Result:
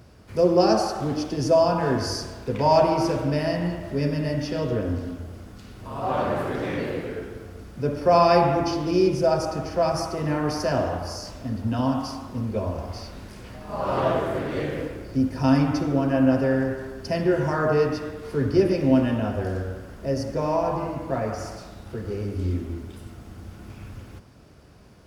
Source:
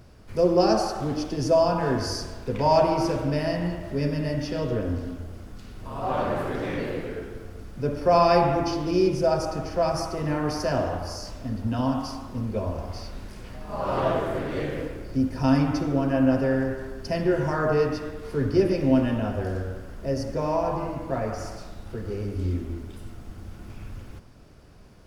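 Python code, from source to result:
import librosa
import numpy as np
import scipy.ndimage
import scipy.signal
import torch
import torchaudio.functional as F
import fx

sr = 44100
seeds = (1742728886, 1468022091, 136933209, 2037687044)

y = scipy.signal.sosfilt(scipy.signal.butter(2, 55.0, 'highpass', fs=sr, output='sos'), x)
y = y * 10.0 ** (1.5 / 20.0)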